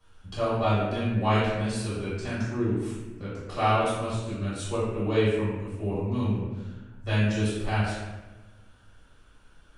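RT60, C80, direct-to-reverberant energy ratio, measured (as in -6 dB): 1.2 s, 1.5 dB, -11.5 dB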